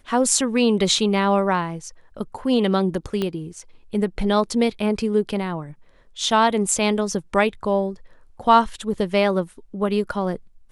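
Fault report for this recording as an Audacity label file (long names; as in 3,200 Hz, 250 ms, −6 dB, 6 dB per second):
3.220000	3.220000	click −12 dBFS
8.940000	8.940000	drop-out 2.6 ms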